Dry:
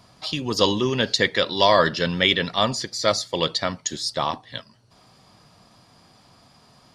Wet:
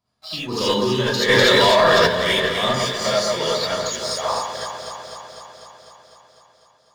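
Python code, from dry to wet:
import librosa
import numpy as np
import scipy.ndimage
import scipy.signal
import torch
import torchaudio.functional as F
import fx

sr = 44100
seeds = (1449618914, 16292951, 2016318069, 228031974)

p1 = fx.noise_reduce_blind(x, sr, reduce_db=10)
p2 = fx.leveller(p1, sr, passes=2)
p3 = p2 + fx.echo_alternate(p2, sr, ms=125, hz=1700.0, feedback_pct=83, wet_db=-4.0, dry=0)
p4 = fx.rev_gated(p3, sr, seeds[0], gate_ms=100, shape='rising', drr_db=-7.5)
p5 = fx.env_flatten(p4, sr, amount_pct=100, at=(1.28, 2.06), fade=0.02)
y = p5 * librosa.db_to_amplitude(-14.0)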